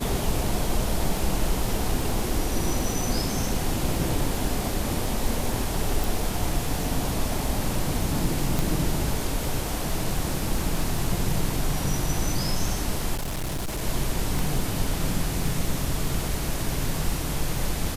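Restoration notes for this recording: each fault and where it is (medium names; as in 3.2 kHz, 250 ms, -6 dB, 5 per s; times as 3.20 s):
crackle 26 per s -29 dBFS
6.04 s: pop
8.59 s: pop
13.15–13.82 s: clipped -25.5 dBFS
14.39 s: pop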